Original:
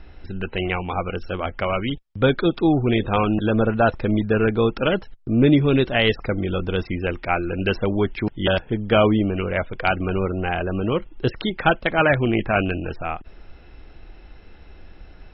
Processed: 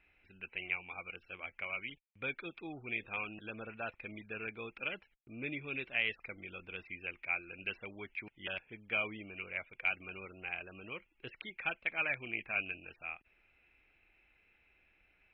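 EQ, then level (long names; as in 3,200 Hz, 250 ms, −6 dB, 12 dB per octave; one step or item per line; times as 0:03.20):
resonant band-pass 2,400 Hz, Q 8.7
spectral tilt −4 dB per octave
+1.5 dB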